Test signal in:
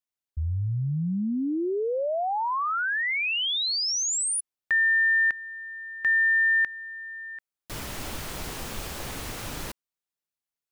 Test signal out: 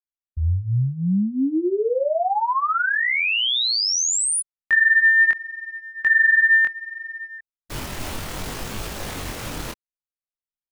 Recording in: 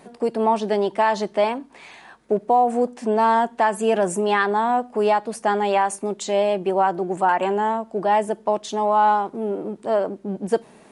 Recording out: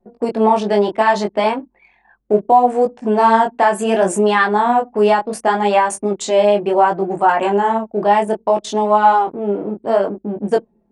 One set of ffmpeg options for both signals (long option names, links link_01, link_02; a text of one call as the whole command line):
ffmpeg -i in.wav -af "anlmdn=2.51,flanger=delay=18.5:depth=6.1:speed=0.68,volume=8.5dB" out.wav